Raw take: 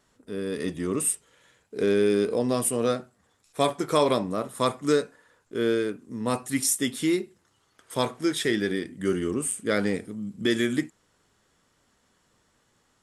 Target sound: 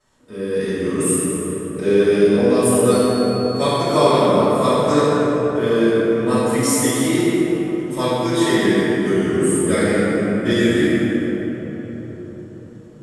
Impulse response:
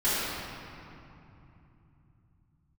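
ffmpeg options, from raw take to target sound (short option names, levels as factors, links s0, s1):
-filter_complex "[0:a]asettb=1/sr,asplit=3[s0][s1][s2];[s0]atrim=end=2.914[s3];[s1]atrim=start=2.91:end=3.98,asetpts=PTS-STARTPTS,afade=t=in:d=0.004:c=qsin,afade=t=out:st=1.066:d=0.004:c=qsin,aeval=exprs='val(0)+0.0141*sin(2*PI*4400*n/s)':c=same[s4];[s2]atrim=start=3.976[s5];[s3][s4]acrossfade=d=0.004:c1=hsin:c2=qsin[s6];[s6][s5]acrossfade=d=0.004:c1=qsin:c2=hsin[s7];[1:a]atrim=start_sample=2205,asetrate=25137,aresample=44100[s8];[s7][s8]afir=irnorm=-1:irlink=0,volume=0.376"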